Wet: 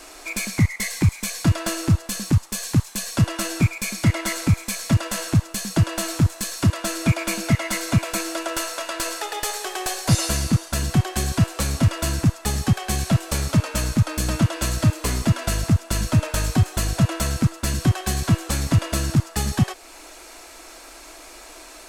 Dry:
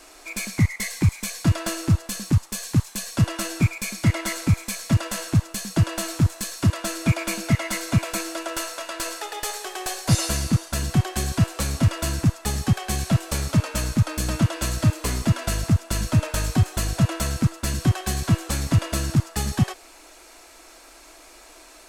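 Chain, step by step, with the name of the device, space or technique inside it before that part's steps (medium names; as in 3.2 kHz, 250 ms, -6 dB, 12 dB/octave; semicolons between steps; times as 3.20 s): parallel compression (in parallel at -1.5 dB: compression, threshold -33 dBFS, peak gain reduction 18 dB)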